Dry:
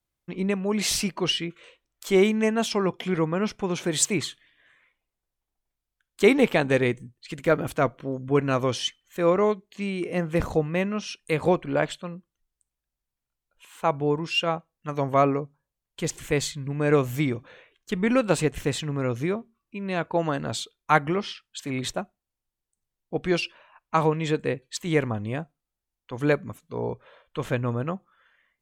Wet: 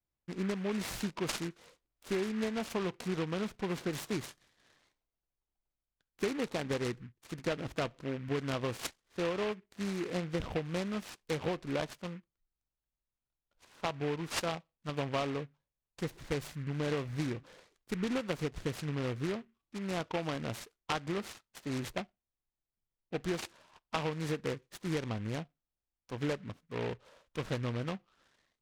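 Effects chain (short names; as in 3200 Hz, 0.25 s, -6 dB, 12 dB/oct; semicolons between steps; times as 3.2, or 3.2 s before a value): air absorption 240 m; compressor 12:1, threshold -24 dBFS, peak gain reduction 12.5 dB; noise-modulated delay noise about 1700 Hz, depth 0.1 ms; gain -5.5 dB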